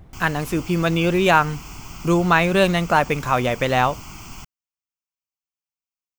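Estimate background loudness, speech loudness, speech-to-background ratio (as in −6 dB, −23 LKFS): −38.0 LKFS, −19.5 LKFS, 18.5 dB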